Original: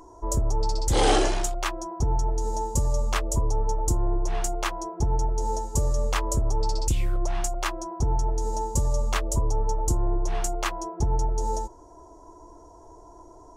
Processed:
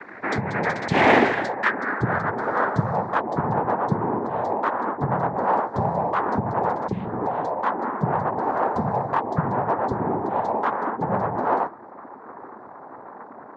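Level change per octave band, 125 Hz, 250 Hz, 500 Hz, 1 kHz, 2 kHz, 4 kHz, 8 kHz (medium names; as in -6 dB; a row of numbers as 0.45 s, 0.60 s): -1.0 dB, +7.0 dB, +6.0 dB, +9.0 dB, +11.0 dB, no reading, under -20 dB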